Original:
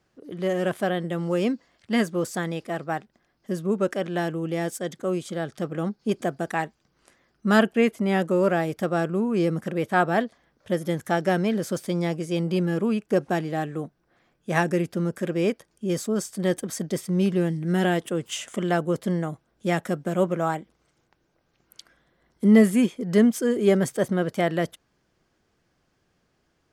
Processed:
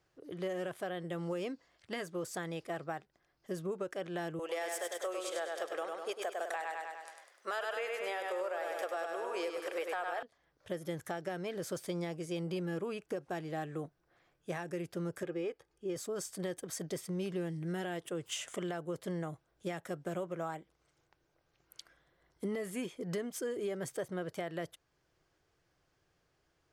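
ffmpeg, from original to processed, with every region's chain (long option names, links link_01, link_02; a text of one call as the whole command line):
ffmpeg -i in.wav -filter_complex "[0:a]asettb=1/sr,asplit=3[link_01][link_02][link_03];[link_01]atrim=end=4.394[link_04];[link_02]atrim=start=4.39:end=10.23,asetpts=PTS-STARTPTS,afade=type=in:duration=0.004:curve=qsin,afade=type=out:start_time=5.836:duration=0.004:curve=qsin,highpass=frequency=500:width=0.5412,highpass=frequency=500:width=1.3066,acontrast=81,aecho=1:1:100|200|300|400|500|600:0.562|0.281|0.141|0.0703|0.0351|0.0176,atrim=end_sample=257544[link_05];[link_03]atrim=start=10.226[link_06];[link_04][link_05]acrossfade=duration=0.004:curve1=hsin:curve2=qsin[link_07];[link_07][link_06]acrossfade=duration=0.004:curve1=qsin:curve2=hsin,asettb=1/sr,asplit=3[link_08][link_09][link_10];[link_08]atrim=end=15.234[link_11];[link_09]atrim=start=15.23:end=15.96,asetpts=PTS-STARTPTS,afade=type=in:duration=0.004:curve=qsin,afade=type=out:start_time=0.726:duration=0.004:curve=qsin,lowpass=frequency=2800:poles=1,aecho=1:1:2.4:0.46,atrim=end_sample=32193[link_12];[link_10]atrim=start=15.956[link_13];[link_11][link_12]acrossfade=duration=0.004:curve1=hsin:curve2=qsin[link_14];[link_14][link_13]acrossfade=duration=0.004:curve1=qsin:curve2=hsin,equalizer=frequency=220:width=3.7:gain=-15,alimiter=limit=-18.5dB:level=0:latency=1:release=477,acompressor=threshold=-30dB:ratio=3,volume=-5dB" out.wav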